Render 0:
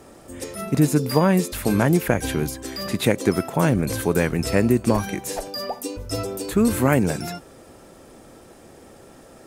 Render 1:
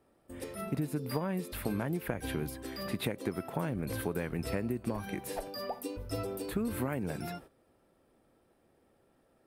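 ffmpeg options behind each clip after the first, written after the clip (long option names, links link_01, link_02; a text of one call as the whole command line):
ffmpeg -i in.wav -af "agate=range=-14dB:threshold=-41dB:ratio=16:detection=peak,equalizer=frequency=6700:width_type=o:width=0.73:gain=-12.5,acompressor=threshold=-21dB:ratio=10,volume=-8dB" out.wav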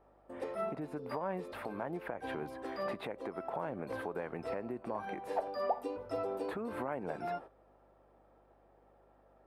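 ffmpeg -i in.wav -af "alimiter=level_in=3.5dB:limit=-24dB:level=0:latency=1:release=262,volume=-3.5dB,bandpass=frequency=800:width_type=q:width=1.4:csg=0,aeval=exprs='val(0)+0.000112*(sin(2*PI*50*n/s)+sin(2*PI*2*50*n/s)/2+sin(2*PI*3*50*n/s)/3+sin(2*PI*4*50*n/s)/4+sin(2*PI*5*50*n/s)/5)':channel_layout=same,volume=8.5dB" out.wav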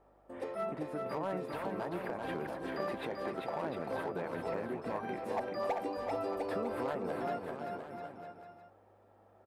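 ffmpeg -i in.wav -filter_complex "[0:a]asoftclip=type=hard:threshold=-29dB,asplit=2[link_01][link_02];[link_02]aecho=0:1:390|702|951.6|1151|1311:0.631|0.398|0.251|0.158|0.1[link_03];[link_01][link_03]amix=inputs=2:normalize=0" out.wav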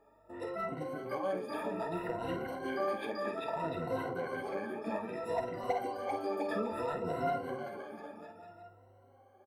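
ffmpeg -i in.wav -filter_complex "[0:a]afftfilt=real='re*pow(10,22/40*sin(2*PI*(2*log(max(b,1)*sr/1024/100)/log(2)-(0.61)*(pts-256)/sr)))':imag='im*pow(10,22/40*sin(2*PI*(2*log(max(b,1)*sr/1024/100)/log(2)-(0.61)*(pts-256)/sr)))':win_size=1024:overlap=0.75,asplit=2[link_01][link_02];[link_02]adelay=49,volume=-9dB[link_03];[link_01][link_03]amix=inputs=2:normalize=0,flanger=delay=7.2:depth=3.4:regen=-48:speed=0.55:shape=sinusoidal" out.wav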